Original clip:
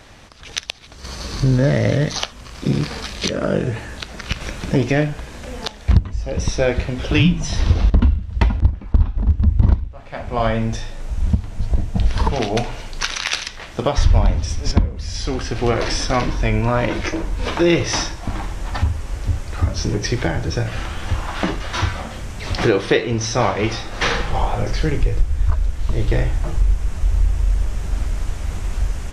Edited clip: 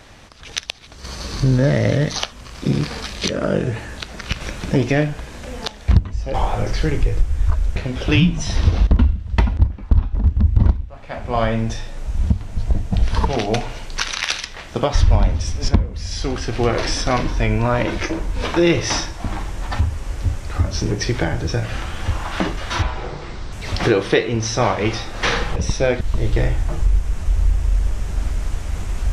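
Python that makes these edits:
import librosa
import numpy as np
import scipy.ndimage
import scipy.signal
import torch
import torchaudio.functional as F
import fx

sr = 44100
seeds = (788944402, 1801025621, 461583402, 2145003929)

y = fx.edit(x, sr, fx.swap(start_s=6.34, length_s=0.45, other_s=24.34, other_length_s=1.42),
    fx.speed_span(start_s=21.85, length_s=0.46, speed=0.65), tone=tone)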